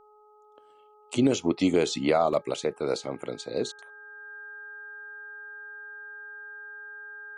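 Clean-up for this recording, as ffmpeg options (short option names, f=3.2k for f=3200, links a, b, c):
-af "bandreject=f=422.2:t=h:w=4,bandreject=f=844.4:t=h:w=4,bandreject=f=1.2666k:t=h:w=4,bandreject=f=1.6k:w=30"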